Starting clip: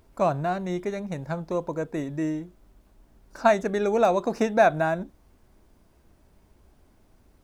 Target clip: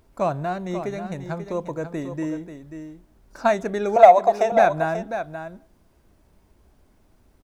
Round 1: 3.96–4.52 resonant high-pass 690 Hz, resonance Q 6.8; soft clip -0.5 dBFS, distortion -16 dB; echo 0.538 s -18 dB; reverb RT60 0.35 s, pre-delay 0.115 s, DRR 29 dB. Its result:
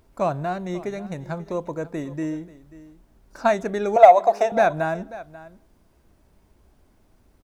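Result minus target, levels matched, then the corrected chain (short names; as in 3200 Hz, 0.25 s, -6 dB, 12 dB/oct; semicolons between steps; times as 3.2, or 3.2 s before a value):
echo-to-direct -8 dB
3.96–4.52 resonant high-pass 690 Hz, resonance Q 6.8; soft clip -0.5 dBFS, distortion -16 dB; echo 0.538 s -9.5 dB; reverb RT60 0.35 s, pre-delay 0.115 s, DRR 29 dB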